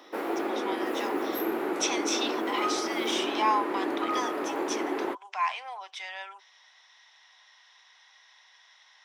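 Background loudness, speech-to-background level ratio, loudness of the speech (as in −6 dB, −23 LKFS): −31.0 LKFS, −2.0 dB, −33.0 LKFS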